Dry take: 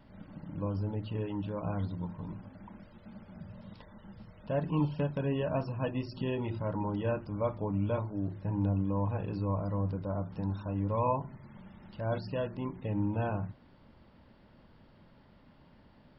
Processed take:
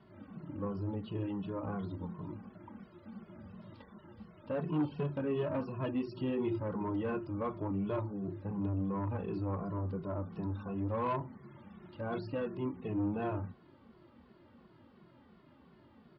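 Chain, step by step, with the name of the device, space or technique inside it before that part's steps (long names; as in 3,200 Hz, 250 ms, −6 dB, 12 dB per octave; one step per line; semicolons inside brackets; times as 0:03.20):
barber-pole flanger into a guitar amplifier (barber-pole flanger 2.3 ms −2.8 Hz; soft clipping −29.5 dBFS, distortion −15 dB; loudspeaker in its box 75–4,600 Hz, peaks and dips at 240 Hz +4 dB, 360 Hz +10 dB, 1,200 Hz +6 dB)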